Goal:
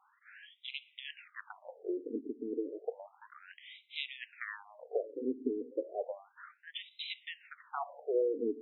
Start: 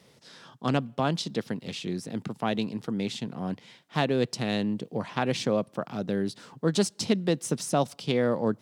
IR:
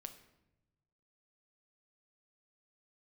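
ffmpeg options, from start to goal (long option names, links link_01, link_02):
-filter_complex "[0:a]acompressor=threshold=-26dB:ratio=4,asplit=2[link_01][link_02];[1:a]atrim=start_sample=2205[link_03];[link_02][link_03]afir=irnorm=-1:irlink=0,volume=2.5dB[link_04];[link_01][link_04]amix=inputs=2:normalize=0,afftfilt=real='re*between(b*sr/1024,320*pow(2900/320,0.5+0.5*sin(2*PI*0.32*pts/sr))/1.41,320*pow(2900/320,0.5+0.5*sin(2*PI*0.32*pts/sr))*1.41)':imag='im*between(b*sr/1024,320*pow(2900/320,0.5+0.5*sin(2*PI*0.32*pts/sr))/1.41,320*pow(2900/320,0.5+0.5*sin(2*PI*0.32*pts/sr))*1.41)':win_size=1024:overlap=0.75,volume=-2.5dB"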